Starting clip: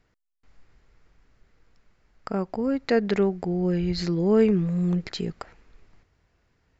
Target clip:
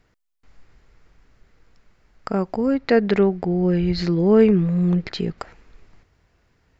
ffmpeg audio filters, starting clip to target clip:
ffmpeg -i in.wav -filter_complex "[0:a]asettb=1/sr,asplit=3[link_01][link_02][link_03];[link_01]atrim=end=2.744[link_04];[link_02]atrim=start=2.74:end=5.38,asetpts=PTS-STARTPTS,afade=type=in:duration=0.004:curve=qsin,afade=type=out:start_time=2.636:duration=0.004:curve=qsin,lowpass=4500[link_05];[link_03]atrim=start=5.376[link_06];[link_04][link_05]acrossfade=duration=0.004:curve1=hsin:curve2=qsin[link_07];[link_07][link_06]acrossfade=duration=0.004:curve1=qsin:curve2=hsin,volume=5dB" out.wav

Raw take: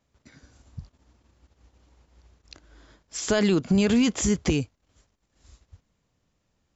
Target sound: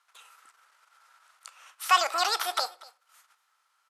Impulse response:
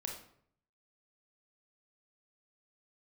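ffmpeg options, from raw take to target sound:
-filter_complex "[0:a]lowpass=5700,acrossover=split=3700[link_01][link_02];[link_02]acompressor=threshold=-43dB:ratio=4:attack=1:release=60[link_03];[link_01][link_03]amix=inputs=2:normalize=0,highpass=frequency=530:width=0.5412,highpass=frequency=530:width=1.3066,equalizer=frequency=770:width=6.4:gain=14.5,aecho=1:1:414:0.0841,asplit=2[link_04][link_05];[1:a]atrim=start_sample=2205[link_06];[link_05][link_06]afir=irnorm=-1:irlink=0,volume=-8.5dB[link_07];[link_04][link_07]amix=inputs=2:normalize=0,asetrate=76440,aresample=44100,volume=3dB"

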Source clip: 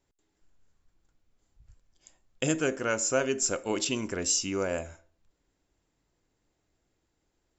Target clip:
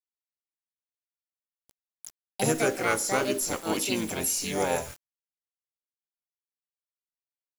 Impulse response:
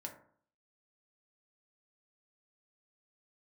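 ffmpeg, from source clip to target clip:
-filter_complex "[0:a]afftfilt=real='re*pow(10,7/40*sin(2*PI*(0.57*log(max(b,1)*sr/1024/100)/log(2)-(-0.39)*(pts-256)/sr)))':imag='im*pow(10,7/40*sin(2*PI*(0.57*log(max(b,1)*sr/1024/100)/log(2)-(-0.39)*(pts-256)/sr)))':win_size=1024:overlap=0.75,acontrast=42,asplit=4[link_01][link_02][link_03][link_04];[link_02]asetrate=35002,aresample=44100,atempo=1.25992,volume=-9dB[link_05];[link_03]asetrate=37084,aresample=44100,atempo=1.18921,volume=-10dB[link_06];[link_04]asetrate=66075,aresample=44100,atempo=0.66742,volume=-3dB[link_07];[link_01][link_05][link_06][link_07]amix=inputs=4:normalize=0,acrossover=split=2600[link_08][link_09];[link_09]acompressor=threshold=-28dB:ratio=4:attack=1:release=60[link_10];[link_08][link_10]amix=inputs=2:normalize=0,aemphasis=mode=production:type=50kf,acrusher=bits=5:mix=0:aa=0.000001,agate=range=-33dB:threshold=-54dB:ratio=3:detection=peak,volume=-7dB"

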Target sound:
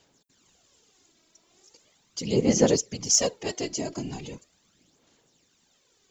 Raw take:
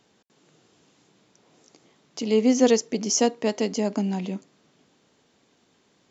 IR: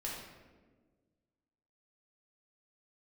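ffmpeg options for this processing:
-af "crystalizer=i=3.5:c=0,afftfilt=real='hypot(re,im)*cos(2*PI*random(0))':imag='hypot(re,im)*sin(2*PI*random(1))':win_size=512:overlap=0.75,aphaser=in_gain=1:out_gain=1:delay=3.1:decay=0.51:speed=0.39:type=sinusoidal,volume=-2.5dB"

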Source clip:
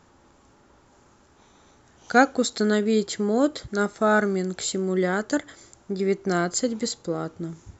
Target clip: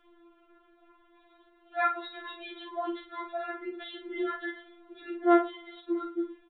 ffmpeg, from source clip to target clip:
ffmpeg -i in.wav -filter_complex "[0:a]aresample=8000,aresample=44100,atempo=1.2,asplit=2[link_01][link_02];[link_02]aecho=0:1:47|110:0.473|0.112[link_03];[link_01][link_03]amix=inputs=2:normalize=0,afftfilt=real='re*4*eq(mod(b,16),0)':imag='im*4*eq(mod(b,16),0)':win_size=2048:overlap=0.75,volume=-2.5dB" out.wav

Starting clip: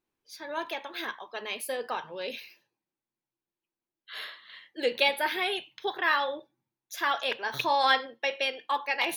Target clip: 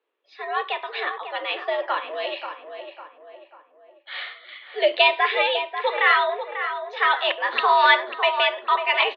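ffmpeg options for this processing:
ffmpeg -i in.wav -filter_complex "[0:a]highpass=frequency=210:width_type=q:width=0.5412,highpass=frequency=210:width_type=q:width=1.307,lowpass=frequency=3400:width_type=q:width=0.5176,lowpass=frequency=3400:width_type=q:width=0.7071,lowpass=frequency=3400:width_type=q:width=1.932,afreqshift=97,asplit=2[link_01][link_02];[link_02]adelay=545,lowpass=frequency=1800:poles=1,volume=-7.5dB,asplit=2[link_03][link_04];[link_04]adelay=545,lowpass=frequency=1800:poles=1,volume=0.46,asplit=2[link_05][link_06];[link_06]adelay=545,lowpass=frequency=1800:poles=1,volume=0.46,asplit=2[link_07][link_08];[link_08]adelay=545,lowpass=frequency=1800:poles=1,volume=0.46,asplit=2[link_09][link_10];[link_10]adelay=545,lowpass=frequency=1800:poles=1,volume=0.46[link_11];[link_01][link_03][link_05][link_07][link_09][link_11]amix=inputs=6:normalize=0,asetrate=45392,aresample=44100,atempo=0.971532,volume=8dB" out.wav

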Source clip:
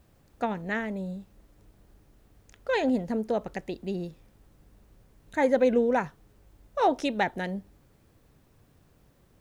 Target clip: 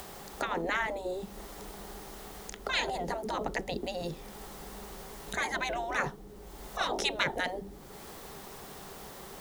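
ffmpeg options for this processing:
ffmpeg -i in.wav -filter_complex "[0:a]acrossover=split=270|700[link_01][link_02][link_03];[link_03]acompressor=mode=upward:threshold=-42dB:ratio=2.5[link_04];[link_01][link_02][link_04]amix=inputs=3:normalize=0,equalizer=frequency=100:width_type=o:width=0.33:gain=-12,equalizer=frequency=200:width_type=o:width=0.33:gain=8,equalizer=frequency=400:width_type=o:width=0.33:gain=12,equalizer=frequency=800:width_type=o:width=0.33:gain=5,equalizer=frequency=1600:width_type=o:width=0.33:gain=-4,equalizer=frequency=2500:width_type=o:width=0.33:gain=-5,afftfilt=real='re*lt(hypot(re,im),0.112)':imag='im*lt(hypot(re,im),0.112)':win_size=1024:overlap=0.75,volume=8dB" out.wav

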